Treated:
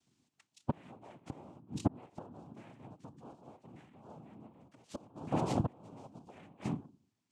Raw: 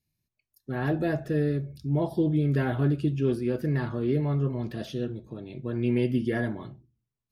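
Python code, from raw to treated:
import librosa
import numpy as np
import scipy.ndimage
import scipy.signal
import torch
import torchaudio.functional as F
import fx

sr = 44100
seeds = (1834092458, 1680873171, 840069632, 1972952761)

y = fx.gate_flip(x, sr, shuts_db=-25.0, range_db=-35)
y = fx.noise_vocoder(y, sr, seeds[0], bands=4)
y = y * librosa.db_to_amplitude(8.0)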